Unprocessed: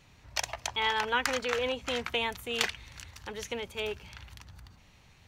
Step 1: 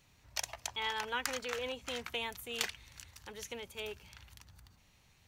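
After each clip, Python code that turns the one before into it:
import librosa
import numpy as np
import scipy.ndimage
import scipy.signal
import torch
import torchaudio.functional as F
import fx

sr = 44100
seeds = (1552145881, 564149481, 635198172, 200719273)

y = fx.high_shelf(x, sr, hz=6600.0, db=11.0)
y = F.gain(torch.from_numpy(y), -8.5).numpy()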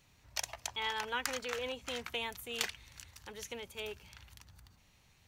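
y = x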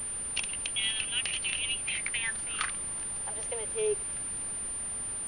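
y = fx.filter_sweep_highpass(x, sr, from_hz=2800.0, to_hz=260.0, start_s=1.71, end_s=4.42, q=6.3)
y = fx.dmg_noise_colour(y, sr, seeds[0], colour='pink', level_db=-47.0)
y = fx.pwm(y, sr, carrier_hz=9200.0)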